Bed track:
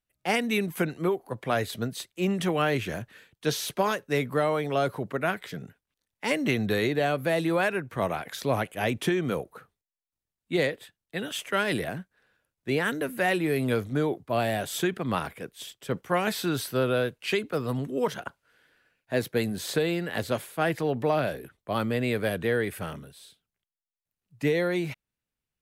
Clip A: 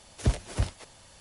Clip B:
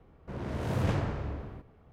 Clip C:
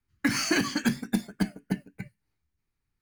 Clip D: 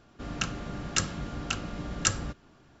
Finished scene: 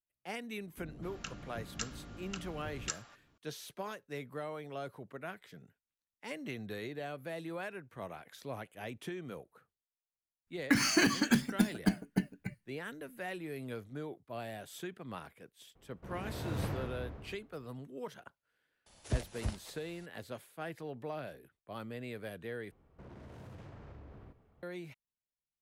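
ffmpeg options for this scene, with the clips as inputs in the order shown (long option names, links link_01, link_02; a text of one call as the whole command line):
ffmpeg -i bed.wav -i cue0.wav -i cue1.wav -i cue2.wav -i cue3.wav -filter_complex "[2:a]asplit=2[link_01][link_02];[0:a]volume=-16dB[link_03];[4:a]acrossover=split=650[link_04][link_05];[link_05]adelay=250[link_06];[link_04][link_06]amix=inputs=2:normalize=0[link_07];[link_02]acompressor=threshold=-39dB:ratio=6:attack=3.2:release=140:knee=1:detection=peak[link_08];[link_03]asplit=2[link_09][link_10];[link_09]atrim=end=22.714[link_11];[link_08]atrim=end=1.92,asetpts=PTS-STARTPTS,volume=-8.5dB[link_12];[link_10]atrim=start=24.626[link_13];[link_07]atrim=end=2.8,asetpts=PTS-STARTPTS,volume=-12dB,afade=type=in:duration=0.004:curve=hsin,afade=type=out:start_time=2.796:duration=0.004:curve=hsin,adelay=580[link_14];[3:a]atrim=end=3.01,asetpts=PTS-STARTPTS,volume=-2dB,afade=type=in:duration=0.02,afade=type=out:start_time=2.99:duration=0.02,adelay=10460[link_15];[link_01]atrim=end=1.92,asetpts=PTS-STARTPTS,volume=-7.5dB,afade=type=in:duration=0.004:curve=hsin,afade=type=out:start_time=1.916:duration=0.004:curve=hsin,adelay=15750[link_16];[1:a]atrim=end=1.2,asetpts=PTS-STARTPTS,volume=-8.5dB,afade=type=in:duration=0.004:curve=hsin,afade=type=out:start_time=1.196:duration=0.004:curve=hsin,adelay=18860[link_17];[link_11][link_12]acrossfade=duration=0.004:curve1=hsin:curve2=hsin[link_18];[link_18][link_13]acrossfade=duration=0.004:curve1=hsin:curve2=hsin[link_19];[link_19][link_14][link_15][link_16][link_17]amix=inputs=5:normalize=0" out.wav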